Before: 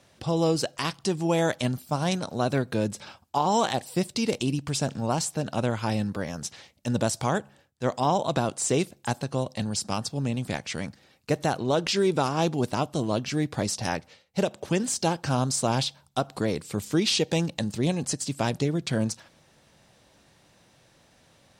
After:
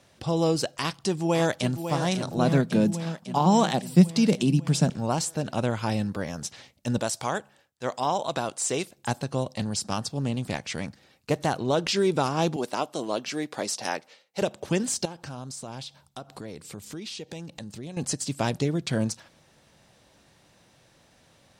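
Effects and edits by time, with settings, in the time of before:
0:00.79–0:01.79: delay throw 550 ms, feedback 65%, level −8.5 dB
0:02.37–0:04.90: high-pass with resonance 170 Hz
0:06.98–0:08.98: low-shelf EQ 330 Hz −10.5 dB
0:09.50–0:11.52: highs frequency-modulated by the lows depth 0.14 ms
0:12.56–0:14.42: high-pass filter 330 Hz
0:15.05–0:17.97: downward compressor 3 to 1, threshold −39 dBFS

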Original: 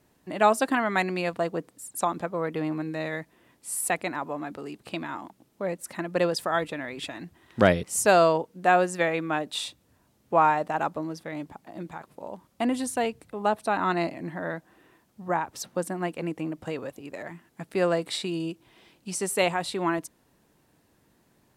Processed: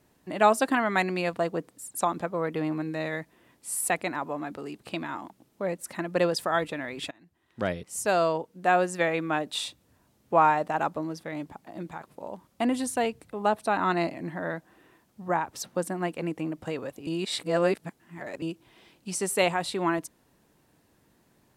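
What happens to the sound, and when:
0:07.11–0:09.22: fade in, from −22 dB
0:17.07–0:18.42: reverse

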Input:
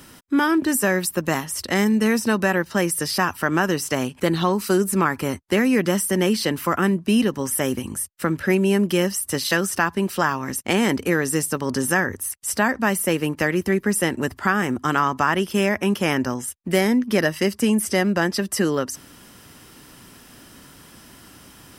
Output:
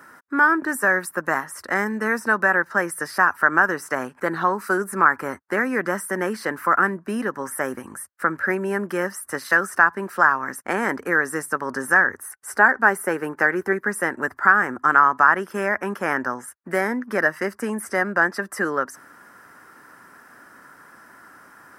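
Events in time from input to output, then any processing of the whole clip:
0:12.22–0:13.73: hollow resonant body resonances 400/810/1,500 Hz, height 7 dB
whole clip: dynamic equaliser 9,800 Hz, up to +4 dB, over −45 dBFS, Q 5.2; high-pass filter 770 Hz 6 dB per octave; high shelf with overshoot 2,200 Hz −12 dB, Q 3; level +2 dB

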